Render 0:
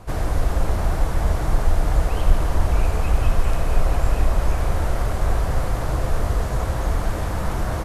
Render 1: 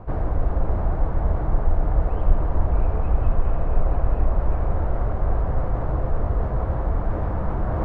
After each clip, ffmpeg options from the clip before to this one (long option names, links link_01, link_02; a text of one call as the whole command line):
ffmpeg -i in.wav -af "areverse,acompressor=mode=upward:threshold=-16dB:ratio=2.5,areverse,lowpass=1100,volume=-1.5dB" out.wav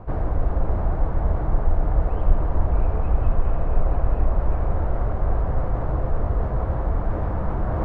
ffmpeg -i in.wav -af anull out.wav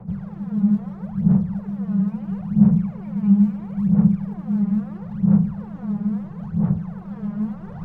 ffmpeg -i in.wav -af "equalizer=frequency=340:width=0.45:gain=-14.5,afreqshift=-220,aphaser=in_gain=1:out_gain=1:delay=4.9:decay=0.79:speed=0.75:type=sinusoidal,volume=-7dB" out.wav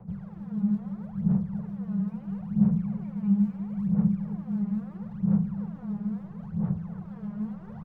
ffmpeg -i in.wav -af "aecho=1:1:285:0.237,volume=-8dB" out.wav